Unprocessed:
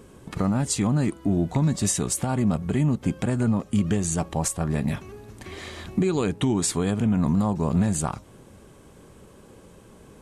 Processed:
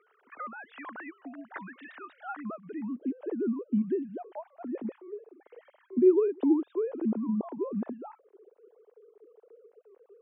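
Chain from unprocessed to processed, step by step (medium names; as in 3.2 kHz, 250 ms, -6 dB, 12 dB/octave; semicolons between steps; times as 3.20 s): formants replaced by sine waves; band-pass sweep 1.6 kHz -> 400 Hz, 2.21–3.09 s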